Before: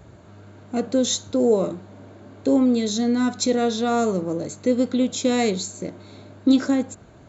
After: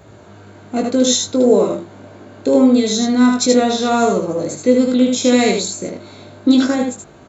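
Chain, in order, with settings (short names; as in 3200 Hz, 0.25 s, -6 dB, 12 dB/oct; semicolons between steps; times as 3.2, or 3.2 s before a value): low shelf 120 Hz -11 dB; doubler 20 ms -5.5 dB; on a send: echo 77 ms -4 dB; on the sum: gain +5.5 dB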